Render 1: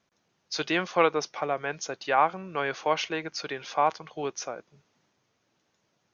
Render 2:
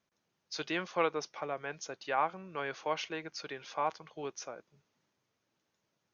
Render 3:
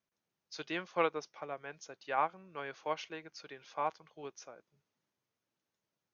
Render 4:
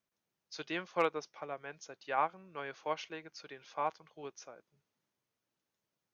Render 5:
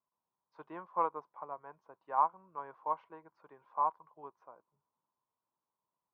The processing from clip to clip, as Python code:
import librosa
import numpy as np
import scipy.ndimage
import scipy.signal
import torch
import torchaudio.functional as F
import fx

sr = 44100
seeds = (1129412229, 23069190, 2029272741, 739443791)

y1 = fx.notch(x, sr, hz=730.0, q=19.0)
y1 = F.gain(torch.from_numpy(y1), -8.0).numpy()
y2 = fx.upward_expand(y1, sr, threshold_db=-42.0, expansion=1.5)
y3 = np.clip(y2, -10.0 ** (-17.0 / 20.0), 10.0 ** (-17.0 / 20.0))
y4 = fx.lowpass_res(y3, sr, hz=1000.0, q=9.1)
y4 = F.gain(torch.from_numpy(y4), -8.5).numpy()